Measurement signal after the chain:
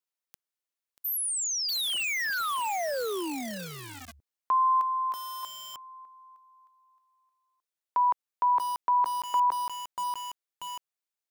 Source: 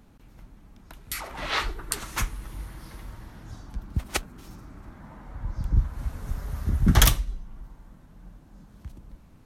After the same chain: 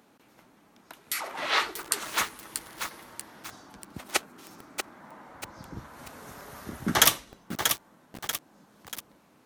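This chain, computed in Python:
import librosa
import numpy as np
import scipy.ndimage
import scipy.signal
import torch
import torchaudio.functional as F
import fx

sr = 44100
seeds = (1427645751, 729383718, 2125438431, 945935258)

y = scipy.signal.sosfilt(scipy.signal.butter(2, 330.0, 'highpass', fs=sr, output='sos'), x)
y = fx.echo_crushed(y, sr, ms=637, feedback_pct=55, bits=6, wet_db=-5.5)
y = y * librosa.db_to_amplitude(2.0)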